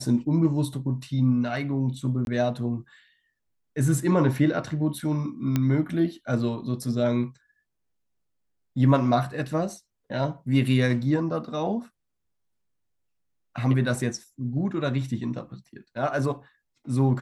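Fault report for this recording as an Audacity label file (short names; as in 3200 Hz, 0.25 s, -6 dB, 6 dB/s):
2.250000	2.270000	gap 21 ms
5.560000	5.560000	pop -11 dBFS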